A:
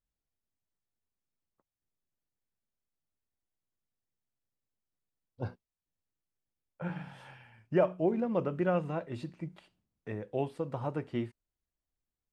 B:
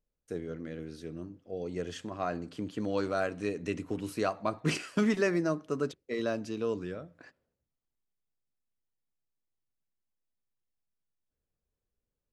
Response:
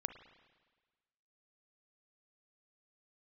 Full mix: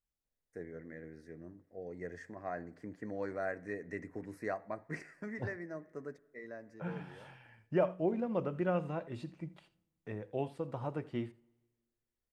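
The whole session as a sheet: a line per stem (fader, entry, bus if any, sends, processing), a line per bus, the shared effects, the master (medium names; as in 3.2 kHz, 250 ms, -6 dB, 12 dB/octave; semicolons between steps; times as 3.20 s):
-4.5 dB, 0.00 s, send -17 dB, echo send -18 dB, none
-10.5 dB, 0.25 s, send -15 dB, no echo send, FFT filter 310 Hz 0 dB, 700 Hz +4 dB, 1.3 kHz -3 dB, 1.9 kHz +13 dB, 3 kHz -21 dB, 5.2 kHz -7 dB; auto duck -11 dB, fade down 0.85 s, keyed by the first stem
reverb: on, RT60 1.4 s, pre-delay 34 ms
echo: delay 83 ms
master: none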